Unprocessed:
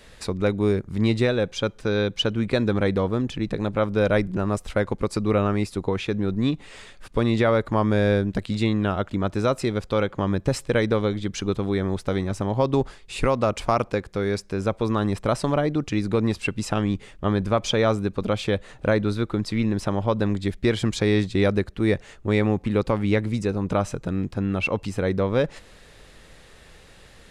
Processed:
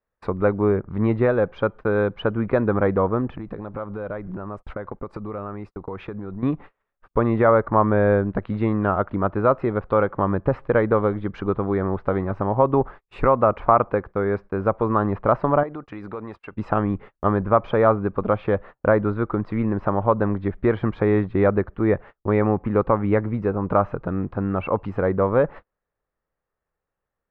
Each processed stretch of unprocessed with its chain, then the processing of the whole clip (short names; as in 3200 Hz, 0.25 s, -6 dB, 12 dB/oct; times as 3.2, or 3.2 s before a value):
3.36–6.43 expander -34 dBFS + compressor 16:1, threshold -28 dBFS
15.63–16.53 low shelf 340 Hz -11 dB + compressor 8:1, threshold -30 dBFS
whole clip: treble ducked by the level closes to 2900 Hz, closed at -21 dBFS; gate -37 dBFS, range -36 dB; EQ curve 240 Hz 0 dB, 1200 Hz +8 dB, 6800 Hz -29 dB